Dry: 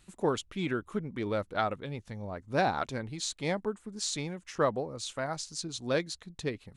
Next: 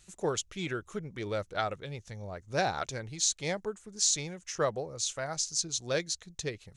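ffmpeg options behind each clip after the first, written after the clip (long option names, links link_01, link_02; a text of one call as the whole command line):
ffmpeg -i in.wav -af "equalizer=frequency=250:width_type=o:width=0.67:gain=-10,equalizer=frequency=1000:width_type=o:width=0.67:gain=-5,equalizer=frequency=6300:width_type=o:width=0.67:gain=11" out.wav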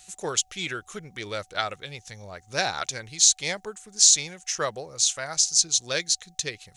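ffmpeg -i in.wav -af "aeval=exprs='val(0)+0.000708*sin(2*PI*750*n/s)':channel_layout=same,tiltshelf=frequency=1300:gain=-7,volume=4.5dB" out.wav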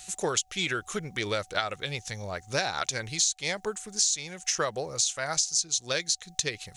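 ffmpeg -i in.wav -af "acompressor=threshold=-30dB:ratio=6,volume=5.5dB" out.wav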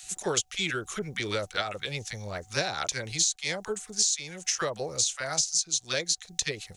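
ffmpeg -i in.wav -filter_complex "[0:a]acrossover=split=980[link_01][link_02];[link_01]adelay=30[link_03];[link_03][link_02]amix=inputs=2:normalize=0" out.wav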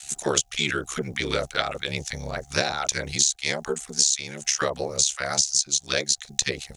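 ffmpeg -i in.wav -af "aeval=exprs='val(0)*sin(2*PI*35*n/s)':channel_layout=same,volume=7.5dB" out.wav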